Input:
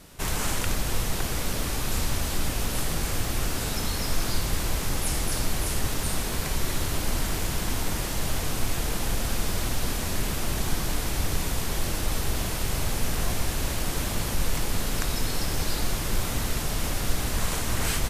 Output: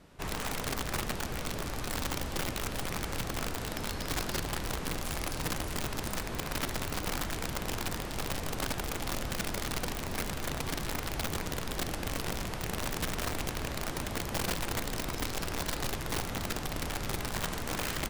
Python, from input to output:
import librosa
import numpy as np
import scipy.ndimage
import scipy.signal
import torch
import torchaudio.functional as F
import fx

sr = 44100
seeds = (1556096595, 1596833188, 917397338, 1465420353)

y = fx.lowpass(x, sr, hz=1900.0, slope=6)
y = fx.low_shelf(y, sr, hz=81.0, db=-5.5)
y = (np.mod(10.0 ** (23.0 / 20.0) * y + 1.0, 2.0) - 1.0) / 10.0 ** (23.0 / 20.0)
y = F.gain(torch.from_numpy(y), -4.5).numpy()